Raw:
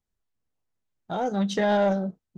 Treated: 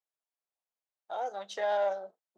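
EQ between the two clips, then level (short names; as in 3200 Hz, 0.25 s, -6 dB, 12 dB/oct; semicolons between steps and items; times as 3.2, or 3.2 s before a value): ladder high-pass 500 Hz, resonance 35%; -1.5 dB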